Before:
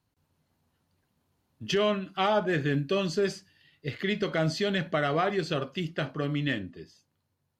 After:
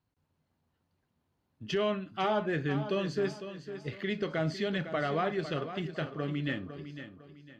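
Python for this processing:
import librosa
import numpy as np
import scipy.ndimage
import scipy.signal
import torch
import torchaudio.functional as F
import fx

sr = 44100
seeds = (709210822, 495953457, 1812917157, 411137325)

p1 = fx.high_shelf(x, sr, hz=5300.0, db=-10.5)
p2 = p1 + fx.echo_feedback(p1, sr, ms=504, feedback_pct=34, wet_db=-11.0, dry=0)
y = p2 * 10.0 ** (-4.0 / 20.0)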